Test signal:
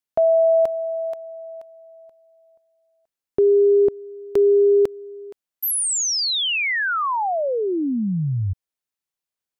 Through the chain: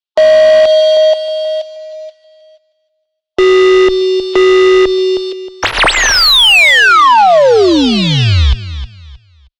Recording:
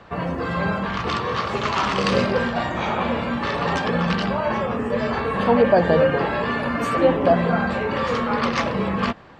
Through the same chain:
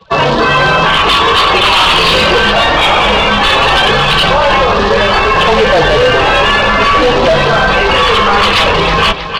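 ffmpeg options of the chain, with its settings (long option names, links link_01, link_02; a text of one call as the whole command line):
ffmpeg -i in.wav -filter_complex "[0:a]afftdn=noise_reduction=30:noise_floor=-36,acrusher=bits=5:mode=log:mix=0:aa=0.000001,asplit=2[link_01][link_02];[link_02]aecho=0:1:314|628|942:0.15|0.0389|0.0101[link_03];[link_01][link_03]amix=inputs=2:normalize=0,aexciter=amount=4.3:drive=7.8:freq=2900,afreqshift=-30,highshelf=frequency=2600:gain=5.5,asoftclip=type=hard:threshold=-11dB,lowpass=frequency=3700:width=0.5412,lowpass=frequency=3700:width=1.3066,asplit=2[link_04][link_05];[link_05]highpass=frequency=720:poles=1,volume=15dB,asoftclip=type=tanh:threshold=-9dB[link_06];[link_04][link_06]amix=inputs=2:normalize=0,lowpass=frequency=2900:poles=1,volume=-6dB,asubboost=boost=6.5:cutoff=68,alimiter=level_in=15dB:limit=-1dB:release=50:level=0:latency=1,volume=-1dB" out.wav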